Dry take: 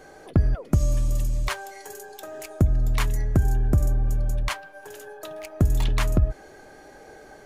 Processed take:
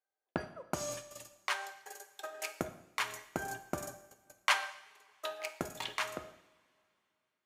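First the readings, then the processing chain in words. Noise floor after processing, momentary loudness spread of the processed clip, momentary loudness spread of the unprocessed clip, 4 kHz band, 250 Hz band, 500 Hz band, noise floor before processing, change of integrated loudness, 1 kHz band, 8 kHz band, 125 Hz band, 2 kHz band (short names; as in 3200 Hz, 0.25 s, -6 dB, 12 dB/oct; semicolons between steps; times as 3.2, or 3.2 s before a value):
under -85 dBFS, 15 LU, 16 LU, -1.5 dB, -16.0 dB, -8.0 dB, -48 dBFS, -13.5 dB, -2.5 dB, -4.0 dB, -28.5 dB, -1.0 dB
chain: Bessel high-pass 870 Hz, order 2; gate -41 dBFS, range -47 dB; high shelf 7300 Hz -9.5 dB; vocal rider within 4 dB 0.5 s; two-slope reverb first 0.74 s, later 3 s, from -21 dB, DRR 8 dB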